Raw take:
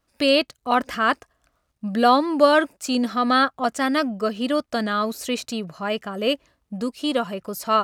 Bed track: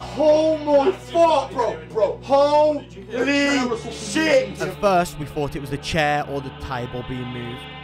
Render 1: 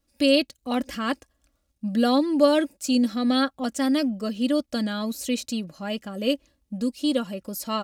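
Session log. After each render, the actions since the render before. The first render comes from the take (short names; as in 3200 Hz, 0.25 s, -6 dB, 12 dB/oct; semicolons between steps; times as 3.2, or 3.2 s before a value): bell 1200 Hz -11.5 dB 2.1 oct; comb 3.6 ms, depth 52%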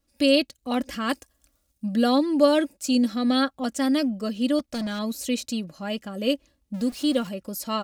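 1.09–1.86 high shelf 5900 Hz +11.5 dB; 4.59–4.99 overloaded stage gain 26 dB; 6.74–7.29 zero-crossing step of -38.5 dBFS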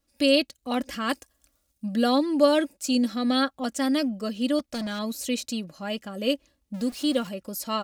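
low shelf 320 Hz -3.5 dB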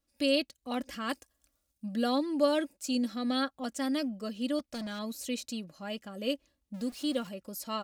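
gain -7 dB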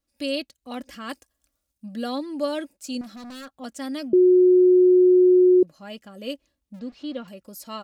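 3.01–3.57 hard clip -37.5 dBFS; 4.13–5.63 bleep 364 Hz -11.5 dBFS; 6.79–7.28 air absorption 190 m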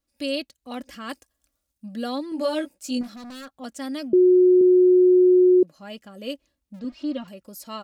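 2.3–3.14 doubler 16 ms -2.5 dB; 4.61–5.75 HPF 140 Hz; 6.84–7.24 comb 3.2 ms, depth 85%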